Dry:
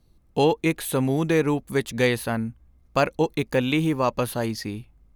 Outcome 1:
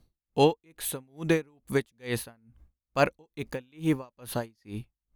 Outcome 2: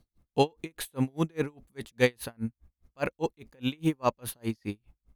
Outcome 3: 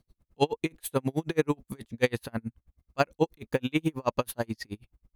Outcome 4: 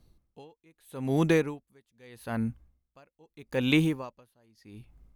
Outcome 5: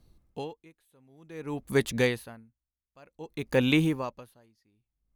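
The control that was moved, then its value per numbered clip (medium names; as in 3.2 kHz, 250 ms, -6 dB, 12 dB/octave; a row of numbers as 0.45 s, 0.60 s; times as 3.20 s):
logarithmic tremolo, rate: 2.3 Hz, 4.9 Hz, 9.3 Hz, 0.8 Hz, 0.54 Hz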